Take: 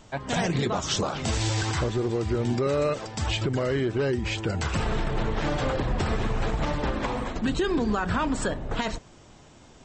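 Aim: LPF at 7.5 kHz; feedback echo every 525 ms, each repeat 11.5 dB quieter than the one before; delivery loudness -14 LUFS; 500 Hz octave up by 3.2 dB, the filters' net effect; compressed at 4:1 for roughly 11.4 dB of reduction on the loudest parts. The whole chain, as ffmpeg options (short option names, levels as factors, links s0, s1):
-af "lowpass=7500,equalizer=f=500:t=o:g=4,acompressor=threshold=0.02:ratio=4,aecho=1:1:525|1050|1575:0.266|0.0718|0.0194,volume=12.6"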